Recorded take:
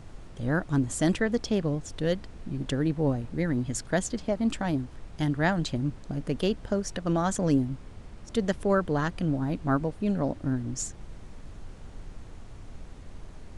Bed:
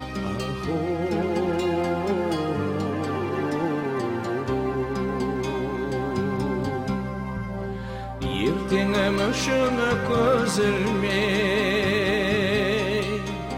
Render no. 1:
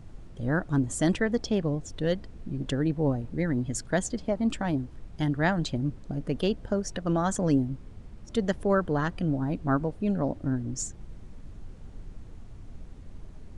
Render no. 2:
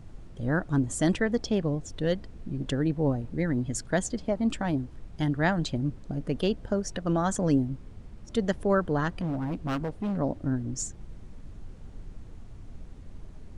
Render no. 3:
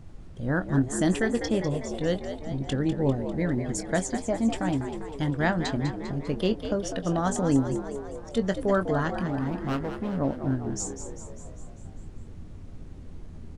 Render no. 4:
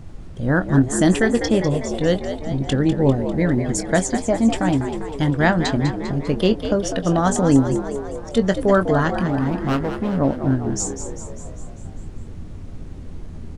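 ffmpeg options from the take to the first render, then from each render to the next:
ffmpeg -i in.wav -af "afftdn=noise_reduction=7:noise_floor=-46" out.wav
ffmpeg -i in.wav -filter_complex "[0:a]asettb=1/sr,asplit=3[link_01][link_02][link_03];[link_01]atrim=end=9.174[link_04];[link_02]atrim=start=9.17:end=10.17,asetpts=PTS-STARTPTS,afade=type=in:duration=0.004:curve=qsin,afade=type=out:start_time=0.996:duration=0.004:curve=qsin,volume=26.5dB,asoftclip=hard,volume=-26.5dB[link_05];[link_03]atrim=start=10.166[link_06];[link_04][link_05]acrossfade=duration=0.004:curve1=hsin:curve2=qsin[link_07];[link_07][link_06]acrossfade=duration=0.004:curve1=qsin:curve2=hsin" out.wav
ffmpeg -i in.wav -filter_complex "[0:a]asplit=2[link_01][link_02];[link_02]adelay=22,volume=-11dB[link_03];[link_01][link_03]amix=inputs=2:normalize=0,asplit=2[link_04][link_05];[link_05]asplit=7[link_06][link_07][link_08][link_09][link_10][link_11][link_12];[link_06]adelay=199,afreqshift=73,volume=-9.5dB[link_13];[link_07]adelay=398,afreqshift=146,volume=-14.1dB[link_14];[link_08]adelay=597,afreqshift=219,volume=-18.7dB[link_15];[link_09]adelay=796,afreqshift=292,volume=-23.2dB[link_16];[link_10]adelay=995,afreqshift=365,volume=-27.8dB[link_17];[link_11]adelay=1194,afreqshift=438,volume=-32.4dB[link_18];[link_12]adelay=1393,afreqshift=511,volume=-37dB[link_19];[link_13][link_14][link_15][link_16][link_17][link_18][link_19]amix=inputs=7:normalize=0[link_20];[link_04][link_20]amix=inputs=2:normalize=0" out.wav
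ffmpeg -i in.wav -af "volume=8dB" out.wav

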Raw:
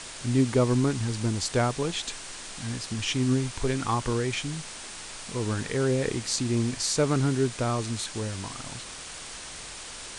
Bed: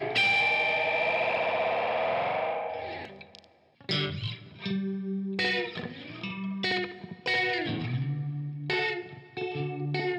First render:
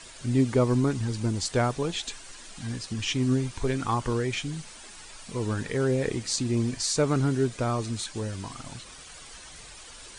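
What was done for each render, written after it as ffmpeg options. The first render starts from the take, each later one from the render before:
ffmpeg -i in.wav -af "afftdn=noise_reduction=10:noise_floor=-41" out.wav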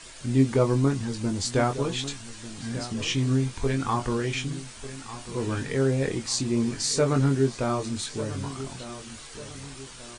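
ffmpeg -i in.wav -filter_complex "[0:a]asplit=2[link_01][link_02];[link_02]adelay=22,volume=-5.5dB[link_03];[link_01][link_03]amix=inputs=2:normalize=0,asplit=2[link_04][link_05];[link_05]adelay=1195,lowpass=frequency=3500:poles=1,volume=-14dB,asplit=2[link_06][link_07];[link_07]adelay=1195,lowpass=frequency=3500:poles=1,volume=0.42,asplit=2[link_08][link_09];[link_09]adelay=1195,lowpass=frequency=3500:poles=1,volume=0.42,asplit=2[link_10][link_11];[link_11]adelay=1195,lowpass=frequency=3500:poles=1,volume=0.42[link_12];[link_04][link_06][link_08][link_10][link_12]amix=inputs=5:normalize=0" out.wav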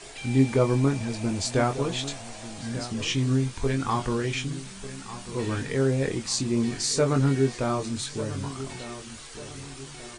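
ffmpeg -i in.wav -i bed.wav -filter_complex "[1:a]volume=-17dB[link_01];[0:a][link_01]amix=inputs=2:normalize=0" out.wav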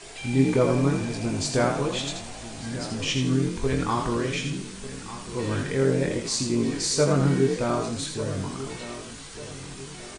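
ffmpeg -i in.wav -filter_complex "[0:a]asplit=2[link_01][link_02];[link_02]adelay=20,volume=-12dB[link_03];[link_01][link_03]amix=inputs=2:normalize=0,asplit=5[link_04][link_05][link_06][link_07][link_08];[link_05]adelay=81,afreqshift=44,volume=-6dB[link_09];[link_06]adelay=162,afreqshift=88,volume=-16.2dB[link_10];[link_07]adelay=243,afreqshift=132,volume=-26.3dB[link_11];[link_08]adelay=324,afreqshift=176,volume=-36.5dB[link_12];[link_04][link_09][link_10][link_11][link_12]amix=inputs=5:normalize=0" out.wav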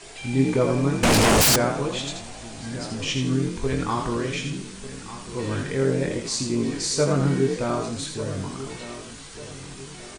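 ffmpeg -i in.wav -filter_complex "[0:a]asettb=1/sr,asplit=3[link_01][link_02][link_03];[link_01]atrim=end=1.034[link_04];[link_02]atrim=start=1.03:end=1.56,asetpts=PTS-STARTPTS,afade=type=in:duration=0.004:curve=qsin,afade=type=out:start_time=0.526:duration=0.004:curve=qsin,aeval=exprs='0.211*sin(PI/2*7.08*val(0)/0.211)':channel_layout=same[link_05];[link_03]atrim=start=1.556[link_06];[link_04][link_05]acrossfade=duration=0.004:curve1=hsin:curve2=qsin[link_07];[link_07][link_06]acrossfade=duration=0.004:curve1=qsin:curve2=hsin" out.wav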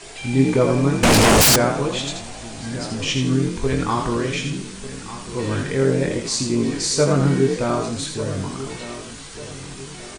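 ffmpeg -i in.wav -af "volume=4dB" out.wav

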